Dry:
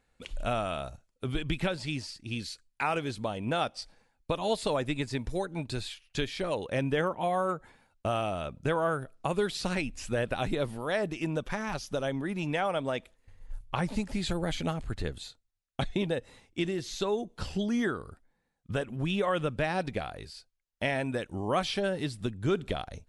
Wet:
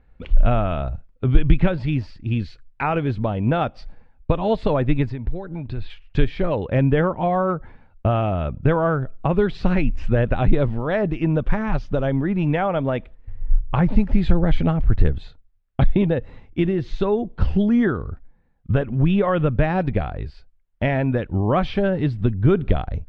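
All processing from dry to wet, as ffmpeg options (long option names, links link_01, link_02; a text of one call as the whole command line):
ffmpeg -i in.wav -filter_complex "[0:a]asettb=1/sr,asplit=3[link_01][link_02][link_03];[link_01]atrim=end=5.104[link_04];[link_02]atrim=start=5.1:end=5.9,asetpts=PTS-STARTPTS,afade=type=in:duration=0.004:curve=qsin,afade=type=out:start_time=0.796:duration=0.004:curve=qsin,lowpass=frequency=5300:width=0.5412,lowpass=frequency=5300:width=1.3066,acompressor=threshold=-40dB:ratio=3:attack=3.2:release=140:knee=1:detection=peak[link_05];[link_03]atrim=start=5.896[link_06];[link_04][link_05]acrossfade=duration=0.004:curve1=hsin:curve2=qsin[link_07];[link_07][link_06]acrossfade=duration=0.004:curve1=qsin:curve2=hsin,lowpass=2700,aemphasis=mode=reproduction:type=bsi,volume=7dB" out.wav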